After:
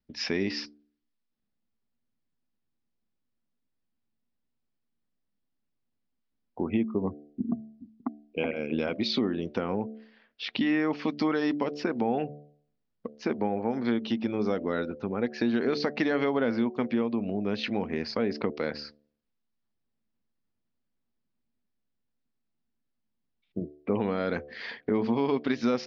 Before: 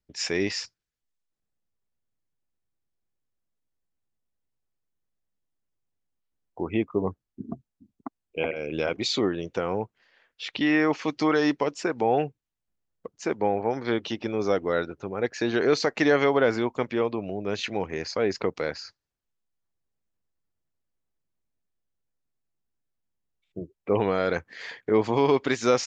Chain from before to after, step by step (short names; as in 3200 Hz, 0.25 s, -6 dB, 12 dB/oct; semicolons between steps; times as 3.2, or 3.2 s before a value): steep low-pass 5300 Hz 48 dB/oct; bell 230 Hz +13 dB 0.49 oct; de-hum 73.44 Hz, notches 10; compressor 2.5:1, threshold -26 dBFS, peak gain reduction 8.5 dB